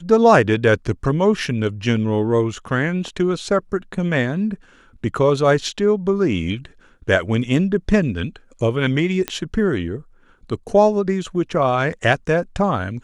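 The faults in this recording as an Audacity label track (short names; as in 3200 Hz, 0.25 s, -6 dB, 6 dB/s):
9.280000	9.280000	pop -7 dBFS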